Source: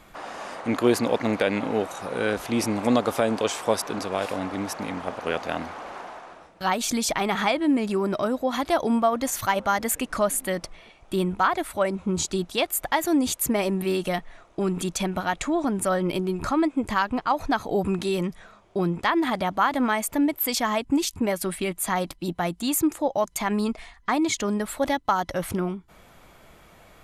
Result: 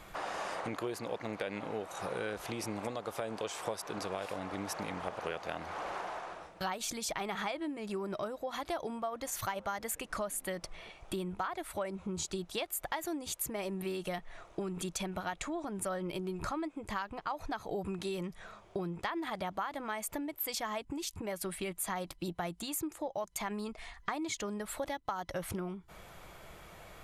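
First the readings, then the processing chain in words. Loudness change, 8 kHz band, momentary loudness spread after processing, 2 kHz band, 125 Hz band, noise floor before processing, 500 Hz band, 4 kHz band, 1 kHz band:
-13.0 dB, -10.0 dB, 5 LU, -11.5 dB, -12.0 dB, -53 dBFS, -12.5 dB, -11.0 dB, -12.5 dB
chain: compression 6:1, threshold -34 dBFS, peak gain reduction 18 dB; peaking EQ 250 Hz -12.5 dB 0.25 oct

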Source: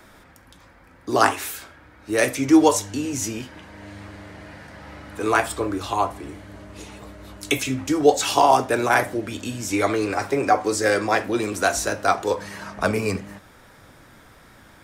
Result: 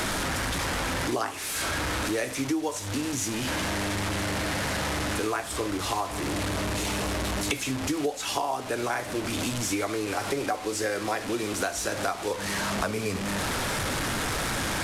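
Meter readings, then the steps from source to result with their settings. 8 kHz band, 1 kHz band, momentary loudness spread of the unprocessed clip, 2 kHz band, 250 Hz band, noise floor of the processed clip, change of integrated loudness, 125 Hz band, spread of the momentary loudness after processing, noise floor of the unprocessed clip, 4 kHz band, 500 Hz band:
-1.0 dB, -8.0 dB, 23 LU, -3.5 dB, -6.0 dB, -35 dBFS, -7.0 dB, +0.5 dB, 2 LU, -50 dBFS, +1.0 dB, -7.5 dB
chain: one-bit delta coder 64 kbps, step -22.5 dBFS; compression 10:1, threshold -25 dBFS, peak gain reduction 16.5 dB

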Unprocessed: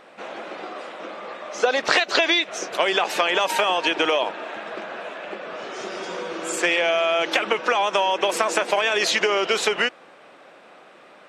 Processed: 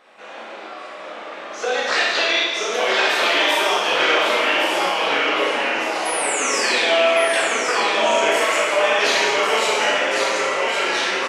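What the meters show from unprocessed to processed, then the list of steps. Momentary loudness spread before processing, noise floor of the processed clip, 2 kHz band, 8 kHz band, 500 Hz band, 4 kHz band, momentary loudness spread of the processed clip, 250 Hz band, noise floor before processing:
15 LU, -35 dBFS, +5.5 dB, +6.5 dB, +3.5 dB, +4.5 dB, 17 LU, +2.0 dB, -49 dBFS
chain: bass shelf 300 Hz -11.5 dB; ever faster or slower copies 773 ms, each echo -2 st, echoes 3; chorus voices 6, 0.46 Hz, delay 17 ms, depth 4.9 ms; painted sound fall, 6.05–7.43 s, 1.4–11 kHz -31 dBFS; on a send: delay 1112 ms -6 dB; on the sum: Schroeder reverb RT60 1.2 s, combs from 28 ms, DRR -3 dB

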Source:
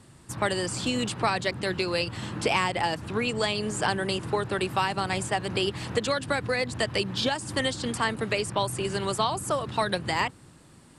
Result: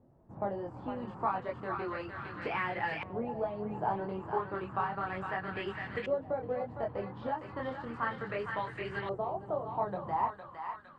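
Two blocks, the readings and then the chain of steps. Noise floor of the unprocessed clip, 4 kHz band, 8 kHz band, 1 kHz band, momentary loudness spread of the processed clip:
-53 dBFS, -23.0 dB, under -40 dB, -5.0 dB, 6 LU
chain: chorus voices 4, 0.32 Hz, delay 23 ms, depth 3.6 ms; thinning echo 459 ms, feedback 55%, high-pass 920 Hz, level -5 dB; LFO low-pass saw up 0.33 Hz 620–2000 Hz; trim -7.5 dB

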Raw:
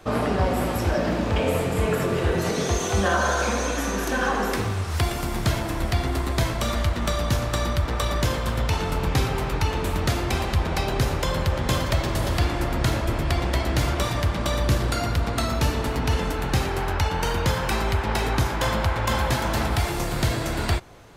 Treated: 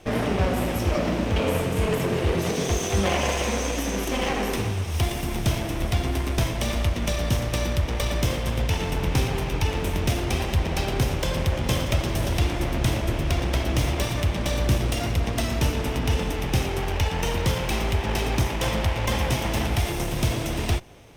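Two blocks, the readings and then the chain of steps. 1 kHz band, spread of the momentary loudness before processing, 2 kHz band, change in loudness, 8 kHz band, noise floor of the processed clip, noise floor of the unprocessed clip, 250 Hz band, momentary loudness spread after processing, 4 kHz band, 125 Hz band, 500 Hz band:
-4.0 dB, 2 LU, -2.5 dB, -1.0 dB, 0.0 dB, -29 dBFS, -28 dBFS, 0.0 dB, 2 LU, 0.0 dB, 0.0 dB, -1.0 dB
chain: comb filter that takes the minimum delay 0.33 ms

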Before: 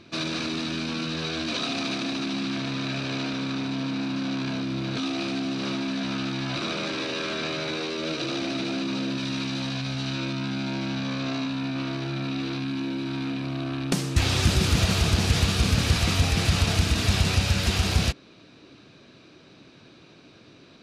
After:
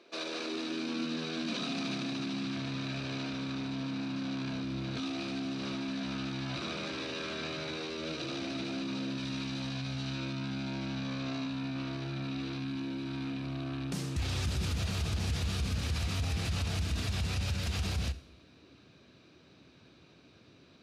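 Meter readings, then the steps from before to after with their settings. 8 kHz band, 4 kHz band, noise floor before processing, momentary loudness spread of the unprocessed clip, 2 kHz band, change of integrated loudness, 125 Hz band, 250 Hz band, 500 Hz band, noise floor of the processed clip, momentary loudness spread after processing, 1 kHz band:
-11.5 dB, -10.0 dB, -52 dBFS, 7 LU, -10.0 dB, -9.0 dB, -9.0 dB, -8.0 dB, -9.0 dB, -59 dBFS, 4 LU, -10.0 dB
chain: high-pass sweep 460 Hz -> 65 Hz, 0.26–3.03 s; two-slope reverb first 0.55 s, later 1.7 s, DRR 17 dB; peak limiter -16.5 dBFS, peak gain reduction 11.5 dB; trim -8.5 dB

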